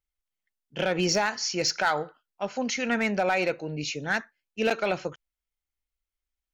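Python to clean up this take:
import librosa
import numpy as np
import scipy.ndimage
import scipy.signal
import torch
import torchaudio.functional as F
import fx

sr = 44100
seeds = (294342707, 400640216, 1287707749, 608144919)

y = fx.fix_declip(x, sr, threshold_db=-16.5)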